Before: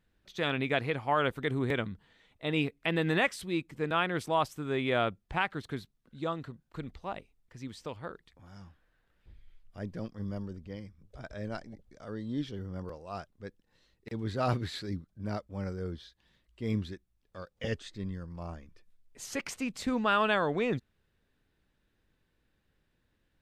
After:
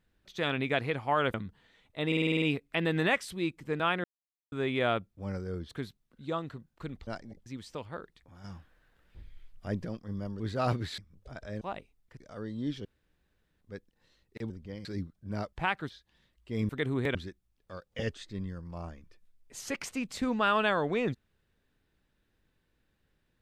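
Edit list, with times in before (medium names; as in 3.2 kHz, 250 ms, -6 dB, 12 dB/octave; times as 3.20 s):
1.34–1.80 s: move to 16.80 s
2.53 s: stutter 0.05 s, 8 plays
4.15–4.63 s: mute
5.26–5.63 s: swap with 15.47–16.01 s
7.01–7.57 s: swap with 11.49–11.88 s
8.55–9.96 s: gain +5.5 dB
10.51–10.86 s: swap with 14.21–14.79 s
12.56–13.32 s: room tone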